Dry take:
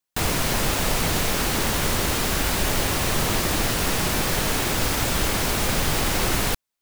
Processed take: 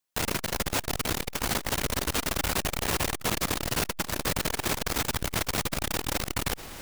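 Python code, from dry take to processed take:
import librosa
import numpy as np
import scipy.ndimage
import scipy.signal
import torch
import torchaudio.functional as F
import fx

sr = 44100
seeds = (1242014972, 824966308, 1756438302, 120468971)

p1 = fx.low_shelf(x, sr, hz=190.0, db=-3.0)
p2 = p1 + fx.echo_single(p1, sr, ms=645, db=-17.5, dry=0)
y = fx.transformer_sat(p2, sr, knee_hz=400.0)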